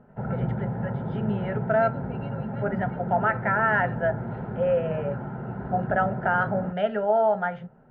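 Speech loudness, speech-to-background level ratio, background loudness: −26.5 LKFS, 5.5 dB, −32.0 LKFS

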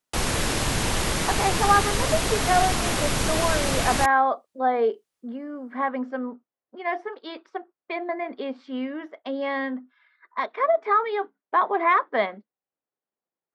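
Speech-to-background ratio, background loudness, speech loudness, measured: −1.0 dB, −24.5 LKFS, −25.5 LKFS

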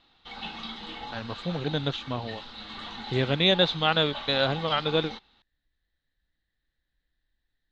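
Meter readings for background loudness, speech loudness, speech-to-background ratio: −39.0 LKFS, −26.0 LKFS, 13.0 dB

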